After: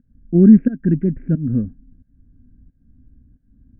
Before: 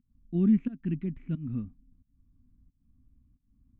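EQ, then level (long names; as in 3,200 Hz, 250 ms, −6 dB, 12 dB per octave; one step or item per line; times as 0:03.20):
low-pass with resonance 1,600 Hz, resonance Q 15
high-frequency loss of the air 120 metres
low shelf with overshoot 750 Hz +11.5 dB, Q 3
+1.5 dB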